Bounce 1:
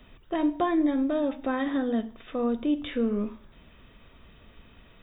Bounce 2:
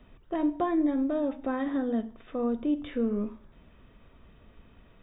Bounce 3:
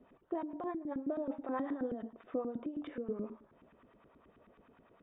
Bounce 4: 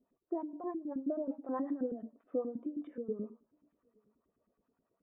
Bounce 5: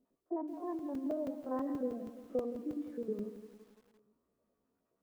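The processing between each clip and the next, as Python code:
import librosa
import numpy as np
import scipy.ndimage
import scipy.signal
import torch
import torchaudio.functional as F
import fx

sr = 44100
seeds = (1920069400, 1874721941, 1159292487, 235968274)

y1 = fx.high_shelf(x, sr, hz=2400.0, db=-11.5)
y1 = y1 * librosa.db_to_amplitude(-1.5)
y2 = fx.over_compress(y1, sr, threshold_db=-31.0, ratio=-1.0)
y2 = fx.filter_lfo_bandpass(y2, sr, shape='saw_up', hz=9.4, low_hz=260.0, high_hz=1500.0, q=1.4)
y2 = y2 * librosa.db_to_amplitude(-1.5)
y3 = y2 + 10.0 ** (-23.0 / 20.0) * np.pad(y2, (int(869 * sr / 1000.0), 0))[:len(y2)]
y3 = fx.spectral_expand(y3, sr, expansion=1.5)
y4 = fx.spec_steps(y3, sr, hold_ms=50)
y4 = fx.buffer_crackle(y4, sr, first_s=0.79, period_s=0.16, block=128, kind='zero')
y4 = fx.echo_crushed(y4, sr, ms=170, feedback_pct=55, bits=10, wet_db=-11.5)
y4 = y4 * librosa.db_to_amplitude(1.0)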